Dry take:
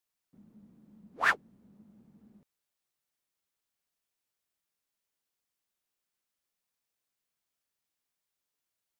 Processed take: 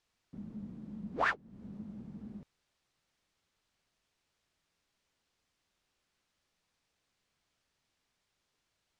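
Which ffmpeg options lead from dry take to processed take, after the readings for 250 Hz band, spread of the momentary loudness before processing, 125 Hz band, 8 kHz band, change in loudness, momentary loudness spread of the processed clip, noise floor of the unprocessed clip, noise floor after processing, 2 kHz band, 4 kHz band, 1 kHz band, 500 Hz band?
+11.5 dB, 5 LU, +11.5 dB, −10.5 dB, −10.0 dB, 17 LU, below −85 dBFS, −83 dBFS, −6.0 dB, −6.0 dB, −2.0 dB, +4.5 dB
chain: -af "lowpass=5600,lowshelf=frequency=150:gain=8.5,acompressor=threshold=-40dB:ratio=5,volume=10dB"

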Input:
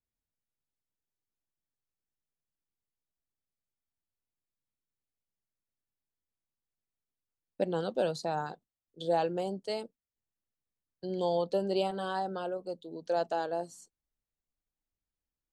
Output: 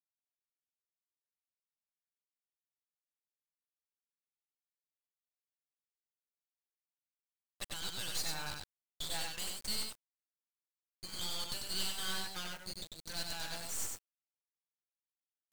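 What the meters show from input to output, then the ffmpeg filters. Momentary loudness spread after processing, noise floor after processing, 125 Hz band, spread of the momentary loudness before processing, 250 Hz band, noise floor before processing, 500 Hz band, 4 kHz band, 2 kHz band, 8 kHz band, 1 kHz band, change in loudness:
10 LU, below −85 dBFS, −9.5 dB, 12 LU, −15.0 dB, below −85 dBFS, −22.5 dB, +7.0 dB, 0.0 dB, +14.5 dB, −14.0 dB, −6.0 dB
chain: -filter_complex "[0:a]highpass=1400,aderivative,bandreject=frequency=2400:width=5.6,afwtdn=0.000355,highshelf=frequency=8000:gain=5.5,areverse,acompressor=mode=upward:threshold=-56dB:ratio=2.5,areverse,asplit=2[link_01][link_02];[link_02]highpass=frequency=720:poles=1,volume=23dB,asoftclip=type=tanh:threshold=-31.5dB[link_03];[link_01][link_03]amix=inputs=2:normalize=0,lowpass=frequency=7900:poles=1,volume=-6dB,acrusher=bits=6:dc=4:mix=0:aa=0.000001,tremolo=f=3.4:d=0.34,asplit=2[link_04][link_05];[link_05]aecho=0:1:95:0.668[link_06];[link_04][link_06]amix=inputs=2:normalize=0,volume=7.5dB"

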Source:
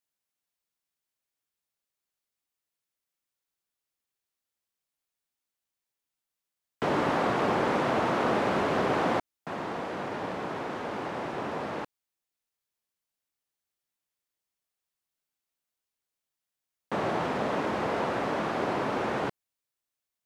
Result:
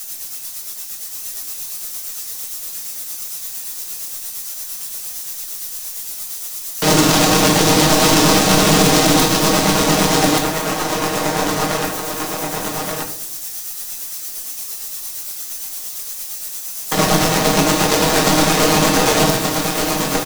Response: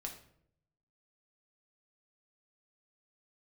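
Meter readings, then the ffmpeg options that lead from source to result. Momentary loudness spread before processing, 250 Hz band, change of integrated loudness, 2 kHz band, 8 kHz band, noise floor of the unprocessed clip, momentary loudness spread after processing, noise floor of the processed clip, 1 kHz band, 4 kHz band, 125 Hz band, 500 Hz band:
8 LU, +16.0 dB, +12.5 dB, +14.5 dB, +36.0 dB, below −85 dBFS, 13 LU, −30 dBFS, +12.0 dB, +25.0 dB, +18.5 dB, +12.0 dB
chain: -filter_complex "[0:a]aeval=exprs='val(0)+0.5*0.0178*sgn(val(0))':channel_layout=same,equalizer=frequency=6200:width_type=o:width=0.29:gain=4.5,bandreject=frequency=6500:width=28,aecho=1:1:6.4:0.89,aeval=exprs='0.282*(cos(1*acos(clip(val(0)/0.282,-1,1)))-cos(1*PI/2))+0.00224*(cos(6*acos(clip(val(0)/0.282,-1,1)))-cos(6*PI/2))+0.0355*(cos(7*acos(clip(val(0)/0.282,-1,1)))-cos(7*PI/2))':channel_layout=same,acrossover=split=330|3000[link_01][link_02][link_03];[link_02]acompressor=threshold=-34dB:ratio=2.5[link_04];[link_01][link_04][link_03]amix=inputs=3:normalize=0,tremolo=f=8.7:d=0.57,bass=frequency=250:gain=-2,treble=frequency=4000:gain=14,aecho=1:1:1180:0.631[link_05];[1:a]atrim=start_sample=2205[link_06];[link_05][link_06]afir=irnorm=-1:irlink=0,alimiter=level_in=21dB:limit=-1dB:release=50:level=0:latency=1,volume=-1dB"

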